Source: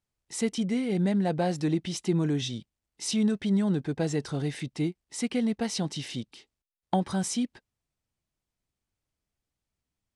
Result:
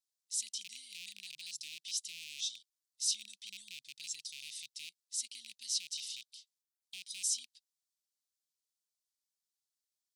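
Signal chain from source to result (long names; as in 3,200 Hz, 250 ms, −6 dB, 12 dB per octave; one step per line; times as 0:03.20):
loose part that buzzes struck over −30 dBFS, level −22 dBFS
inverse Chebyshev high-pass filter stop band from 1,500 Hz, stop band 50 dB
level +1 dB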